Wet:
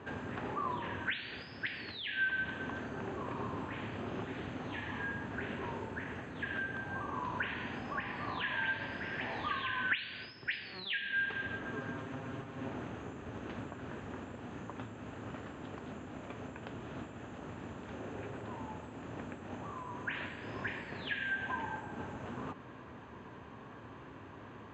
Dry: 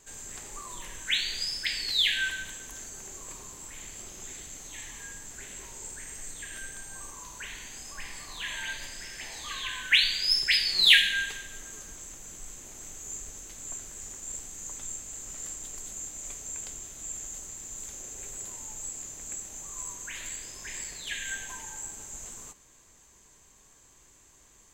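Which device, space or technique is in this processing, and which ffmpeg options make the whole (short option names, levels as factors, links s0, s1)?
bass amplifier: -filter_complex "[0:a]asettb=1/sr,asplit=3[s0][s1][s2];[s0]atrim=end=11.744[s3];[s1]atrim=start=11.74:end=12.69,asetpts=PTS-STARTPTS,afade=t=in:d=0.004:c=qsin,afade=t=out:st=0.946:d=0.004:c=qsin,aecho=1:1:7.5:0.84,atrim=end_sample=41895[s4];[s2]atrim=start=12.686[s5];[s3][s4]acrossfade=d=0.004:c1=hsin:c2=qsin[s6];[s6][s5]acrossfade=d=0.004:c1=qsin:c2=hsin,acompressor=threshold=0.00631:ratio=5,highpass=f=84:w=0.5412,highpass=f=84:w=1.3066,equalizer=f=110:t=q:w=4:g=4,equalizer=f=250:t=q:w=4:g=6,equalizer=f=2100:t=q:w=4:g=-9,lowpass=f=2300:w=0.5412,lowpass=f=2300:w=1.3066,volume=5.96"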